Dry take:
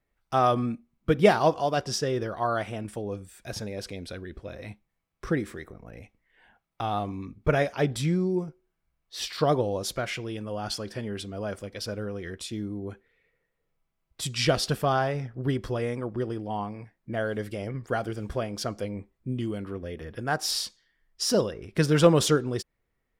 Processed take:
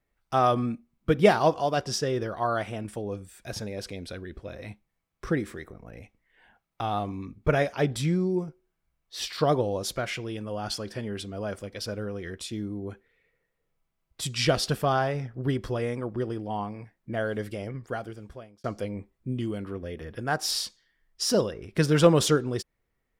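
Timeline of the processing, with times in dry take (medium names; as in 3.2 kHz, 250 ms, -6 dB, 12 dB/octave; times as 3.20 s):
17.46–18.64 s: fade out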